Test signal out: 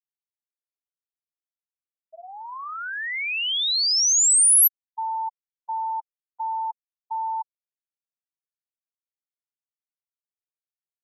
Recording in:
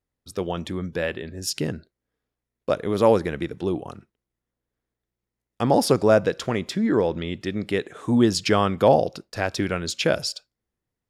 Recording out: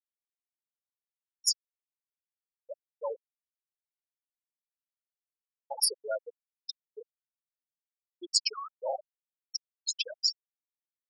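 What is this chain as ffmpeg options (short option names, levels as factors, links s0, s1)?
-af "aderivative,afftfilt=real='re*gte(hypot(re,im),0.0794)':imag='im*gte(hypot(re,im),0.0794)':win_size=1024:overlap=0.75,volume=2.11"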